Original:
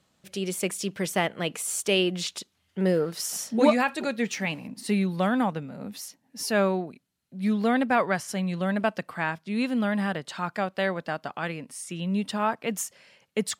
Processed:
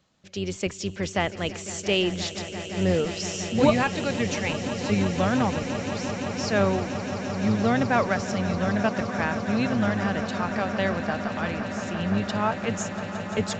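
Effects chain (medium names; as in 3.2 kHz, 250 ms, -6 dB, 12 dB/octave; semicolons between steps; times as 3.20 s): octave divider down 1 oct, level -6 dB; echo with a slow build-up 172 ms, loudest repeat 8, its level -15 dB; resampled via 16 kHz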